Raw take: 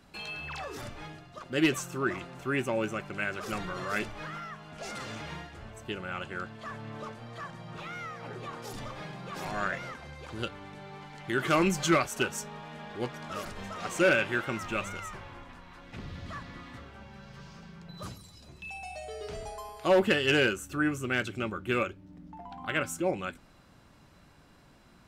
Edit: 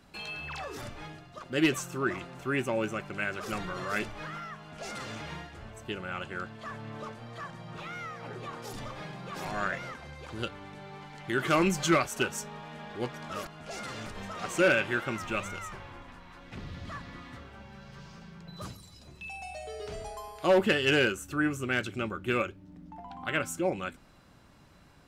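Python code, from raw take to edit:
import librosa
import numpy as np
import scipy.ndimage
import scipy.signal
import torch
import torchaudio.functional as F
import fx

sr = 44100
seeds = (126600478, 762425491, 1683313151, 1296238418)

y = fx.edit(x, sr, fx.duplicate(start_s=4.59, length_s=0.59, to_s=13.47), tone=tone)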